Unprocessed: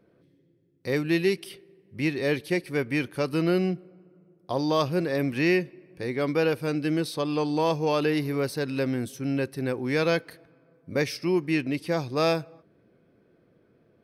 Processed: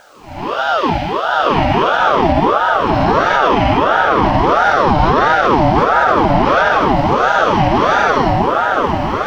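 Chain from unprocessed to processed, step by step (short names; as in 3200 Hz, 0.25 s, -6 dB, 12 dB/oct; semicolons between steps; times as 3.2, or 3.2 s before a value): time blur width 0.69 s; HPF 98 Hz 24 dB/oct; low shelf 450 Hz -2 dB; plain phase-vocoder stretch 0.66×; added noise violet -54 dBFS; air absorption 170 m; repeats that get brighter 0.366 s, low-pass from 200 Hz, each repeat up 2 oct, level 0 dB; maximiser +25 dB; ring modulator with a swept carrier 770 Hz, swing 45%, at 1.5 Hz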